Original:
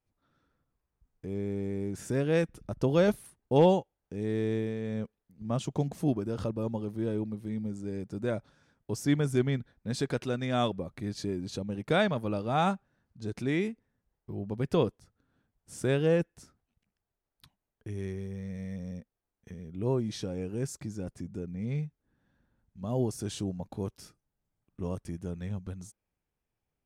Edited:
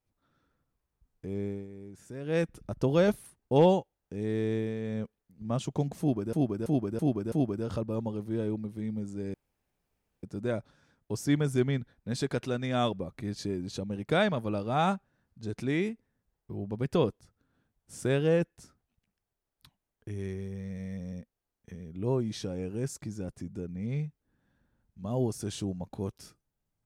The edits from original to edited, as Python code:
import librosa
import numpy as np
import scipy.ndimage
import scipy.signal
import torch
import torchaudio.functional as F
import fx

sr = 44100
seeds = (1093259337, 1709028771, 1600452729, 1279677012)

y = fx.edit(x, sr, fx.fade_down_up(start_s=1.45, length_s=0.97, db=-12.0, fade_s=0.22),
    fx.repeat(start_s=6.0, length_s=0.33, count=5),
    fx.insert_room_tone(at_s=8.02, length_s=0.89), tone=tone)